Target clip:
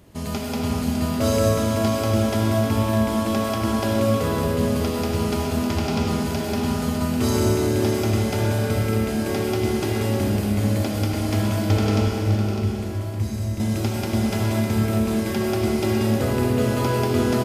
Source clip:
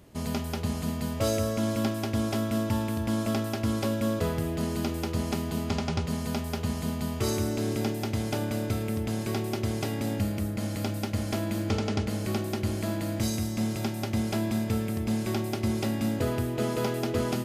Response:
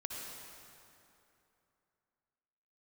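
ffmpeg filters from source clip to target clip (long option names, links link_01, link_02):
-filter_complex "[0:a]asettb=1/sr,asplit=3[link_01][link_02][link_03];[link_01]atrim=end=12.074[link_04];[link_02]atrim=start=12.07:end=13.6,asetpts=PTS-STARTPTS,afade=type=in:duration=0.004:curve=qsin,afade=type=out:start_time=1.526:duration=0.004:curve=qsin,acrossover=split=140[link_05][link_06];[link_06]acompressor=threshold=-44dB:ratio=3[link_07];[link_05][link_07]amix=inputs=2:normalize=0[link_08];[link_03]atrim=start=13.596[link_09];[link_04][link_08]acrossfade=duration=0.004:curve1=hsin:curve2=qsin[link_10];[link_10][link_09]acrossfade=duration=0.004:curve1=qsin:curve2=hsin,aecho=1:1:604:0.376[link_11];[1:a]atrim=start_sample=2205[link_12];[link_11][link_12]afir=irnorm=-1:irlink=0,volume=6.5dB"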